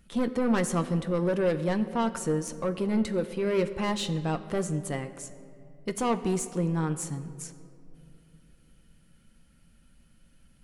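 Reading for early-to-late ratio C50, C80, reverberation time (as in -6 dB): 13.0 dB, 13.5 dB, 2.8 s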